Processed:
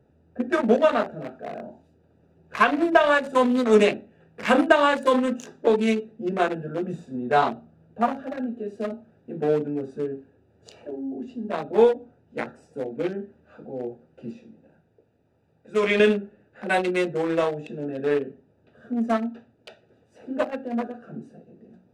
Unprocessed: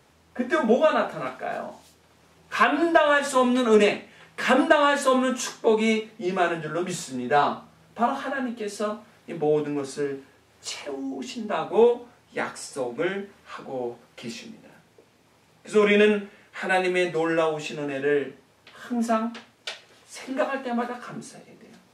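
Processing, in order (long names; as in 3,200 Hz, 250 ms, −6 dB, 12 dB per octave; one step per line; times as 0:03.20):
adaptive Wiener filter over 41 samples
0:14.39–0:16.00: parametric band 230 Hz −6.5 dB 2.2 octaves
level +1.5 dB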